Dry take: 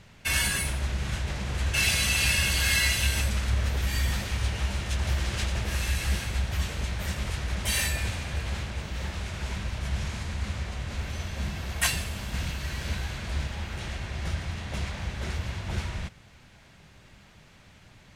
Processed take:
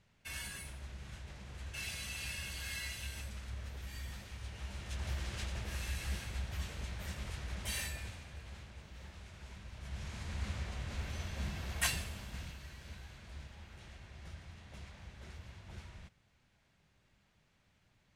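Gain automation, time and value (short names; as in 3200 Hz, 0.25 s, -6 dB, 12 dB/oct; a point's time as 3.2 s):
4.42 s -18 dB
5.04 s -11.5 dB
7.71 s -11.5 dB
8.34 s -18 dB
9.64 s -18 dB
10.38 s -7.5 dB
11.89 s -7.5 dB
12.78 s -18.5 dB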